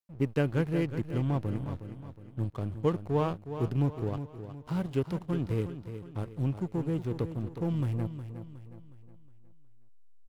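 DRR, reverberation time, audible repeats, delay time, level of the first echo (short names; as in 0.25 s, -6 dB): none, none, 4, 0.364 s, -10.5 dB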